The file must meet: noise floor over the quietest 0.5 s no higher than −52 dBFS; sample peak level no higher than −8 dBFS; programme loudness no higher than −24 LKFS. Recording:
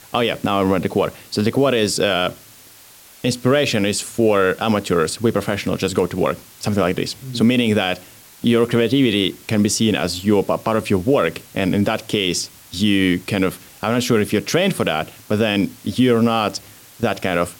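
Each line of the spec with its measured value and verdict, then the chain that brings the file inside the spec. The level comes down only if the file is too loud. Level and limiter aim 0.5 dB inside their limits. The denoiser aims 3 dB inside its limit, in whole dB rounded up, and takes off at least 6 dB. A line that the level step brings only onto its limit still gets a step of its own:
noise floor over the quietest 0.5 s −45 dBFS: out of spec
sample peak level −5.0 dBFS: out of spec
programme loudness −19.0 LKFS: out of spec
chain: broadband denoise 6 dB, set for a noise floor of −45 dBFS
level −5.5 dB

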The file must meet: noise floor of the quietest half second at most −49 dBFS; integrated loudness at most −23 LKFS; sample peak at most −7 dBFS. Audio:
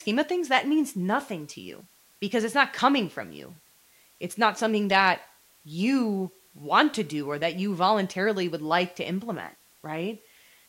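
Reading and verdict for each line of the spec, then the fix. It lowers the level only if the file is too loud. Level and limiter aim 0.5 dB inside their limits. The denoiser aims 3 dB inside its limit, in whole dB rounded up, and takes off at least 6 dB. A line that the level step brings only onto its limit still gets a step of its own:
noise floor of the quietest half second −59 dBFS: in spec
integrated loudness −25.5 LKFS: in spec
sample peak −6.0 dBFS: out of spec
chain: brickwall limiter −7.5 dBFS

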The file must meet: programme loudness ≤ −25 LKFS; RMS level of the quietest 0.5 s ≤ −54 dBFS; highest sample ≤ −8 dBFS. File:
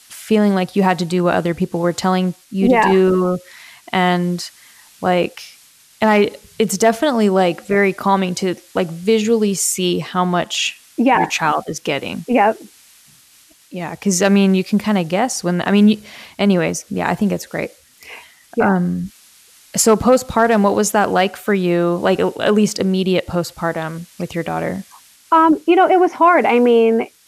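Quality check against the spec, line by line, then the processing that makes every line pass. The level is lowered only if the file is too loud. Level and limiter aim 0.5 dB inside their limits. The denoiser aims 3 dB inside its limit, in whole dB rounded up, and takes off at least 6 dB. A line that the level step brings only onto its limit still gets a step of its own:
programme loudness −16.5 LKFS: out of spec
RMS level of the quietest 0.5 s −50 dBFS: out of spec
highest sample −3.5 dBFS: out of spec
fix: level −9 dB

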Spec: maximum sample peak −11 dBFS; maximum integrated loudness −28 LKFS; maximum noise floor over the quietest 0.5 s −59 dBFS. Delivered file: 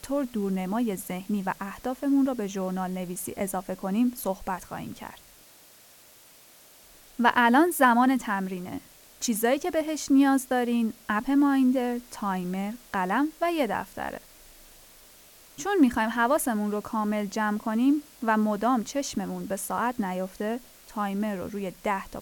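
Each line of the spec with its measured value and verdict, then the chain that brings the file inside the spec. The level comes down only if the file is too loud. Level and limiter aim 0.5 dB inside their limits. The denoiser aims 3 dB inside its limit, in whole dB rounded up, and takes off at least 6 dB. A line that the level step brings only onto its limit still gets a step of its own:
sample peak −7.5 dBFS: out of spec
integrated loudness −26.5 LKFS: out of spec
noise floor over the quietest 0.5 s −54 dBFS: out of spec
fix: broadband denoise 6 dB, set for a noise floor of −54 dBFS
level −2 dB
brickwall limiter −11.5 dBFS

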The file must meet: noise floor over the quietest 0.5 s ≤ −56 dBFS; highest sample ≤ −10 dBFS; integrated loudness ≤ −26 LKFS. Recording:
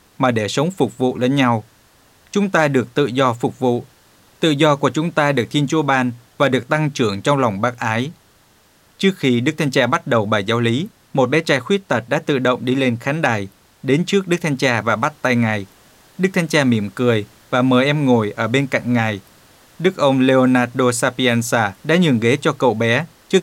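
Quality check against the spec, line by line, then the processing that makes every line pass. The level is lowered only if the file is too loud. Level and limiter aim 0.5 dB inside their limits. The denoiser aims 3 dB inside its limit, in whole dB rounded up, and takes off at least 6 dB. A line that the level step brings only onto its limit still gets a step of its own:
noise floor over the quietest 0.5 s −54 dBFS: out of spec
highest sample −2.5 dBFS: out of spec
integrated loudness −17.5 LKFS: out of spec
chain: level −9 dB

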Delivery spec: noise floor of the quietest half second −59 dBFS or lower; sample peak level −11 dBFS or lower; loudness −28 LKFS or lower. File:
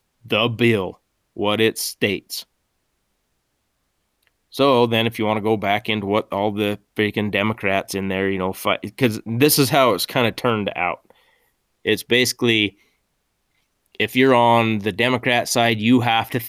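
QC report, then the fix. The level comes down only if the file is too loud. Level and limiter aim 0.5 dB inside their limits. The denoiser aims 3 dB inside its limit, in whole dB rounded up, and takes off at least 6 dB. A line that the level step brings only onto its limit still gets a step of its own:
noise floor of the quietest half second −71 dBFS: in spec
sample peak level −4.0 dBFS: out of spec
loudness −19.0 LKFS: out of spec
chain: level −9.5 dB

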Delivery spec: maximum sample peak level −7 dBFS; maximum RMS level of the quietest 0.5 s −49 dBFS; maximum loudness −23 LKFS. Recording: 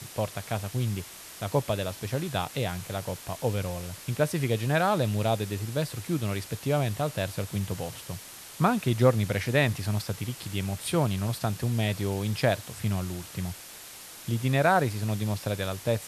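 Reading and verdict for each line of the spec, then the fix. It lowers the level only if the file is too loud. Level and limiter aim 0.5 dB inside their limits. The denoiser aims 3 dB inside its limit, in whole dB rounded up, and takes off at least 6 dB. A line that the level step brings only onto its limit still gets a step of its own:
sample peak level −10.0 dBFS: in spec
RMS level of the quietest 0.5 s −45 dBFS: out of spec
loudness −29.0 LKFS: in spec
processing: broadband denoise 7 dB, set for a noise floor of −45 dBFS

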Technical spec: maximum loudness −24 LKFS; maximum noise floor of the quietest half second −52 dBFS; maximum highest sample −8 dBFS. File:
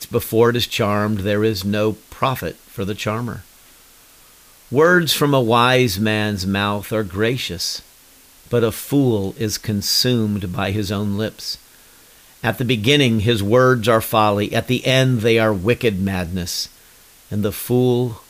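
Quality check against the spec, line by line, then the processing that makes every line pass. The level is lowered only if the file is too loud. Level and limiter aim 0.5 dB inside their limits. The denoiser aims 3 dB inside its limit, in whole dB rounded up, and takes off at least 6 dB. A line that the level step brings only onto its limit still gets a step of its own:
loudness −18.5 LKFS: out of spec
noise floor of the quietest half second −48 dBFS: out of spec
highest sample −3.5 dBFS: out of spec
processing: level −6 dB

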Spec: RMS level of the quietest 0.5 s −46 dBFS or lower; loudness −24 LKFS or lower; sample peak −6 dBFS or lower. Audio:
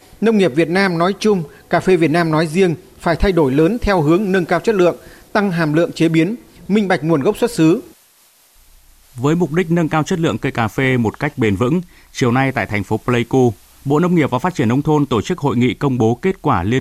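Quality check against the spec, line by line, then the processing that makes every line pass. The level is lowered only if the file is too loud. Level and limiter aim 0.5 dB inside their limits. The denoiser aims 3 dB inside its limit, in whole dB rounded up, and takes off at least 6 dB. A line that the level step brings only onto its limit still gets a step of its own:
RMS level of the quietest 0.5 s −52 dBFS: in spec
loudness −16.0 LKFS: out of spec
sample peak −4.0 dBFS: out of spec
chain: level −8.5 dB

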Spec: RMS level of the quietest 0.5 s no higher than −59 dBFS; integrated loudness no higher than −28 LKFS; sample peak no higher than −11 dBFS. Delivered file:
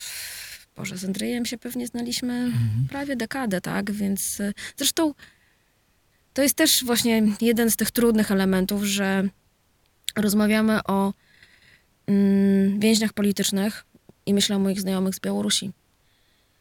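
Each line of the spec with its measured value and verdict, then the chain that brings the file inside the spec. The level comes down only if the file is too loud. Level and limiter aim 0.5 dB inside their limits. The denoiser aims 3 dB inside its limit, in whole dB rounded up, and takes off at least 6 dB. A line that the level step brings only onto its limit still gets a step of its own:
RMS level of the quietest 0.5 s −65 dBFS: in spec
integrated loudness −23.0 LKFS: out of spec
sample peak −5.5 dBFS: out of spec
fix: level −5.5 dB
brickwall limiter −11.5 dBFS

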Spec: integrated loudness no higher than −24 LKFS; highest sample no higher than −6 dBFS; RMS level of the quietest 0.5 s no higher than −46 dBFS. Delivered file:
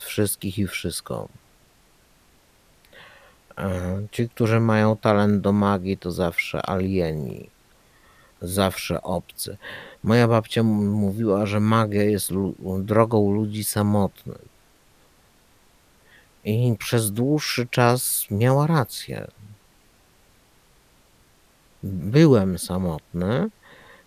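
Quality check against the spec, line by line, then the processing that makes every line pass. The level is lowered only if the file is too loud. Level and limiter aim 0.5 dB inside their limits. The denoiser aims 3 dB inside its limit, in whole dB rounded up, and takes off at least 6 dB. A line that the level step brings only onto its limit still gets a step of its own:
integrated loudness −22.5 LKFS: out of spec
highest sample −2.5 dBFS: out of spec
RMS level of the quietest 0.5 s −58 dBFS: in spec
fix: level −2 dB
brickwall limiter −6.5 dBFS

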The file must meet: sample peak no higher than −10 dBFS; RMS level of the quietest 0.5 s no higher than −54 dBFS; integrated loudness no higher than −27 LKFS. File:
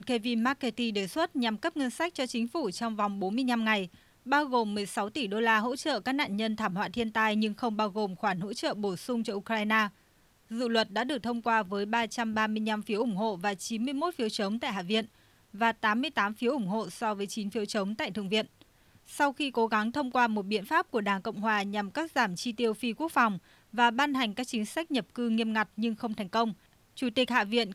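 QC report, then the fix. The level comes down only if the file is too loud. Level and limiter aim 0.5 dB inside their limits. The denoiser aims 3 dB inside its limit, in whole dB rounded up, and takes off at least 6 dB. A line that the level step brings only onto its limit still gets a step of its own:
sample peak −10.5 dBFS: in spec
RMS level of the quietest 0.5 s −64 dBFS: in spec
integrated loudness −30.0 LKFS: in spec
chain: no processing needed

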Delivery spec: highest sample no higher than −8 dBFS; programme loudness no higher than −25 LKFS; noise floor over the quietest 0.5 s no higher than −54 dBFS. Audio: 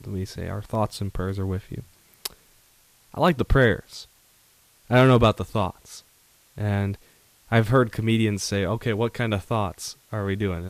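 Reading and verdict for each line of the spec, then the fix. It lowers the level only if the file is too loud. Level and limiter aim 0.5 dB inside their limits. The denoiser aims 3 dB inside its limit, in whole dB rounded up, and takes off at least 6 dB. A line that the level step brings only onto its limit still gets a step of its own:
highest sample −7.0 dBFS: out of spec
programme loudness −24.0 LKFS: out of spec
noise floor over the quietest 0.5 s −59 dBFS: in spec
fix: level −1.5 dB

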